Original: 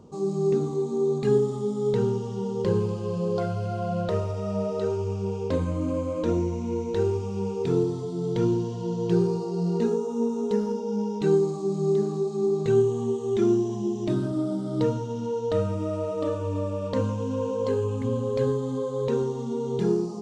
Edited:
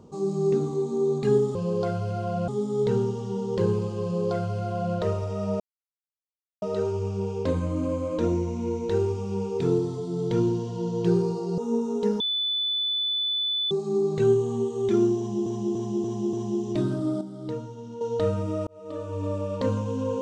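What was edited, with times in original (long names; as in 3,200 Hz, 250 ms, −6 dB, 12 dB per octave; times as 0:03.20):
0:03.10–0:04.03: duplicate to 0:01.55
0:04.67: splice in silence 1.02 s
0:09.63–0:10.06: remove
0:10.68–0:12.19: beep over 3,490 Hz −23.5 dBFS
0:13.65–0:13.94: repeat, 5 plays
0:14.53–0:15.33: clip gain −8.5 dB
0:15.99–0:16.65: fade in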